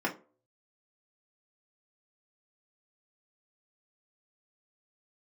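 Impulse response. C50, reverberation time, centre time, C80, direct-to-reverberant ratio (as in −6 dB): 14.0 dB, 0.40 s, 13 ms, 20.5 dB, −3.0 dB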